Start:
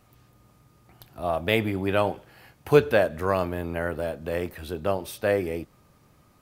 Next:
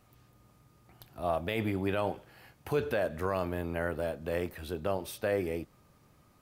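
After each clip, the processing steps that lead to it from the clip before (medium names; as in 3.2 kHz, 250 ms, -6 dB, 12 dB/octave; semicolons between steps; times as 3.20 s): peak limiter -15 dBFS, peak gain reduction 10 dB; trim -4 dB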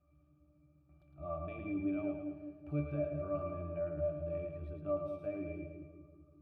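pitch-class resonator D, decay 0.24 s; two-band feedback delay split 580 Hz, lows 193 ms, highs 109 ms, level -5 dB; trim +4 dB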